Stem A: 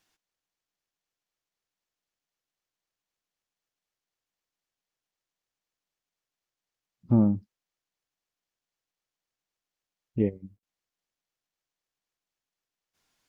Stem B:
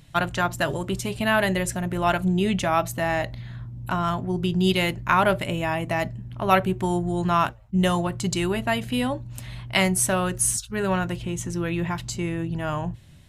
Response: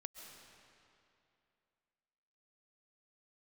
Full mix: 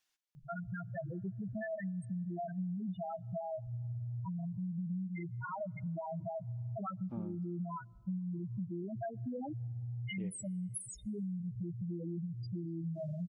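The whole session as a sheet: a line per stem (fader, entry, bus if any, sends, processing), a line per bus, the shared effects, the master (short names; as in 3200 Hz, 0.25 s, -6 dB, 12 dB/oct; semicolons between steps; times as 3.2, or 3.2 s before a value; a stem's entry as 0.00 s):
-12.0 dB, 0.00 s, send -16.5 dB, tilt shelf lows -6 dB, about 920 Hz
-1.0 dB, 0.35 s, send -22 dB, comb 6.2 ms, depth 44%; compressor 5:1, threshold -27 dBFS, peak gain reduction 14 dB; loudest bins only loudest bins 2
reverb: on, RT60 2.7 s, pre-delay 95 ms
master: compressor 3:1, threshold -38 dBFS, peak gain reduction 9 dB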